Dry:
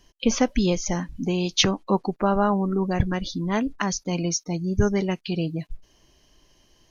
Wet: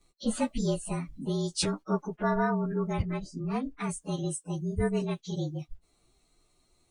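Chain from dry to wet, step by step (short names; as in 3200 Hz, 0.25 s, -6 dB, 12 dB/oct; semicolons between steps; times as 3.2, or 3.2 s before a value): inharmonic rescaling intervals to 112%; 3.02–3.84 high shelf 3100 Hz -8.5 dB; gain -5 dB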